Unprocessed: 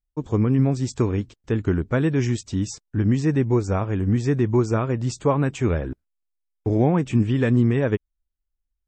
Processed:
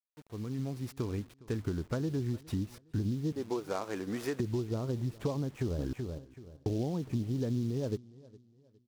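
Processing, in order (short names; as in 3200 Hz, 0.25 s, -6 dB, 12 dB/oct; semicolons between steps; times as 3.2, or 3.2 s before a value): opening faded in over 2.68 s; 3.32–4.4 HPF 410 Hz 12 dB/oct; treble ducked by the level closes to 710 Hz, closed at -18 dBFS; compressor 6:1, threshold -27 dBFS, peak gain reduction 12.5 dB; bit-crush 9-bit; dark delay 0.411 s, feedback 34%, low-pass 2700 Hz, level -21.5 dB; 5.4–5.8 echo throw 0.38 s, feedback 25%, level -5 dB; noise-modulated delay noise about 4300 Hz, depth 0.031 ms; gain -3 dB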